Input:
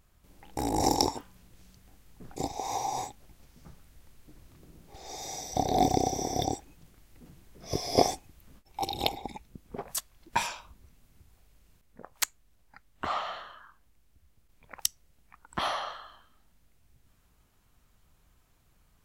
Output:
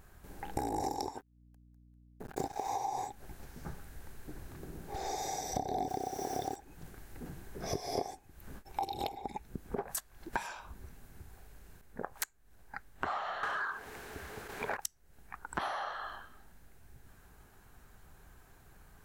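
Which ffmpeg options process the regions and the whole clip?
ffmpeg -i in.wav -filter_complex "[0:a]asettb=1/sr,asplit=3[link_01][link_02][link_03];[link_01]atrim=end=1.204[link_04];[link_02]atrim=start=1.2:end=2.69,asetpts=PTS-STARTPTS,afade=type=in:duration=0.004:curve=qsin,afade=type=out:start_time=1.486:duration=0.004:curve=qsin,aeval=exprs='sgn(val(0))*max(abs(val(0))-0.00562,0)':channel_layout=same,acrusher=bits=7:mode=log:mix=0:aa=0.000001,aeval=exprs='val(0)+0.000501*(sin(2*PI*60*n/s)+sin(2*PI*2*60*n/s)/2+sin(2*PI*3*60*n/s)/3+sin(2*PI*4*60*n/s)/4+sin(2*PI*5*60*n/s)/5)':channel_layout=same[link_05];[link_03]atrim=start=2.686[link_06];[link_04][link_05]acrossfade=duration=0.004:curve1=hsin:curve2=qsin[link_07];[link_07][link_06]acrossfade=duration=0.004:curve1=qsin:curve2=hsin,asettb=1/sr,asplit=3[link_08][link_09][link_10];[link_08]atrim=end=5.884[link_11];[link_09]atrim=start=5.88:end=6.56,asetpts=PTS-STARTPTS,afade=type=in:duration=0.004:curve=qsin,afade=type=out:start_time=0.676:duration=0.004:curve=qsin,lowshelf=frequency=170:gain=-5.5,acrusher=bits=5:mix=0:aa=0.5[link_12];[link_10]atrim=start=6.556[link_13];[link_11][link_12]acrossfade=duration=0.004:curve1=hsin:curve2=qsin[link_14];[link_14][link_13]acrossfade=duration=0.004:curve1=qsin:curve2=hsin,asettb=1/sr,asplit=3[link_15][link_16][link_17];[link_15]atrim=end=13.434[link_18];[link_16]atrim=start=13.43:end=14.77,asetpts=PTS-STARTPTS,afade=type=in:duration=0.004:curve=qsin,afade=type=out:start_time=1.336:duration=0.004:curve=qsin,equalizer=frequency=430:width=6.5:gain=8.5,asplit=2[link_19][link_20];[link_20]highpass=frequency=720:poles=1,volume=32dB,asoftclip=type=tanh:threshold=-24.5dB[link_21];[link_19][link_21]amix=inputs=2:normalize=0,lowpass=frequency=2800:poles=1,volume=-6dB[link_22];[link_17]atrim=start=14.766[link_23];[link_18][link_22]acrossfade=duration=0.004:curve1=hsin:curve2=qsin[link_24];[link_24][link_23]acrossfade=duration=0.004:curve1=qsin:curve2=hsin,equalizer=frequency=400:width_type=o:width=0.33:gain=6,equalizer=frequency=800:width_type=o:width=0.33:gain=6,equalizer=frequency=1600:width_type=o:width=0.33:gain=9,equalizer=frequency=4000:width_type=o:width=0.33:gain=5,acompressor=threshold=-40dB:ratio=8,equalizer=frequency=3900:width=1.2:gain=-7.5,volume=7dB" out.wav

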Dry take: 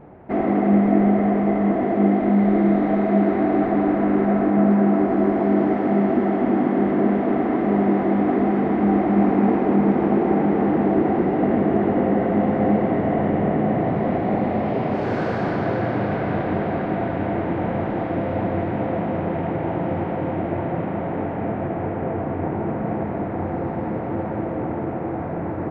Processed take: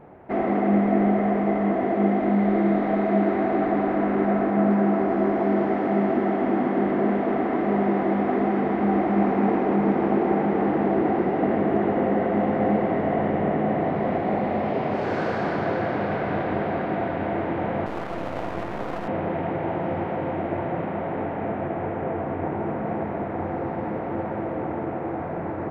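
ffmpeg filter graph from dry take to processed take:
ffmpeg -i in.wav -filter_complex "[0:a]asettb=1/sr,asplit=3[link_01][link_02][link_03];[link_01]atrim=end=17.864[link_04];[link_02]atrim=start=17.86:end=19.08,asetpts=PTS-STARTPTS,afade=type=in:duration=0.004:curve=qsin,afade=type=out:start_time=1.216:duration=0.004:curve=qsin,asplit=2[link_05][link_06];[link_06]adelay=26,volume=-11dB[link_07];[link_05][link_07]amix=inputs=2:normalize=0,atrim=end_sample=53802,aeval=exprs='max(val(0),0)':channel_layout=same[link_08];[link_03]atrim=start=19.076[link_09];[link_04][link_08]acrossfade=duration=0.004:curve1=hsin:curve2=qsin[link_10];[link_10][link_09]acrossfade=duration=0.004:curve1=qsin:curve2=hsin,lowshelf=frequency=320:gain=-5.5,bandreject=frequency=60:width_type=h:width=6,bandreject=frequency=120:width_type=h:width=6,bandreject=frequency=180:width_type=h:width=6,bandreject=frequency=240:width_type=h:width=6,bandreject=frequency=300:width_type=h:width=6" out.wav

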